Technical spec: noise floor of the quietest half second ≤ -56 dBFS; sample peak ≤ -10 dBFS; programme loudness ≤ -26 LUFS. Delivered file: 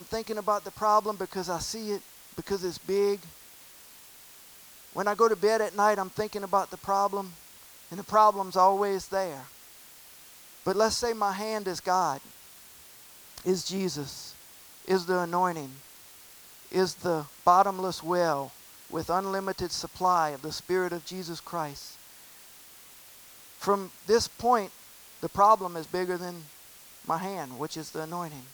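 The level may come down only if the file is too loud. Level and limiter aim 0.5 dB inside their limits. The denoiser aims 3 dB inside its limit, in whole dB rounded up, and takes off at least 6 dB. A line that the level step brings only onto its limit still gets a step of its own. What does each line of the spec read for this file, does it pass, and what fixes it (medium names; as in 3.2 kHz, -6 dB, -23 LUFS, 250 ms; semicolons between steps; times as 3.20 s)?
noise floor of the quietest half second -51 dBFS: fail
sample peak -8.0 dBFS: fail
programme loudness -28.0 LUFS: pass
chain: noise reduction 8 dB, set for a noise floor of -51 dBFS; peak limiter -10.5 dBFS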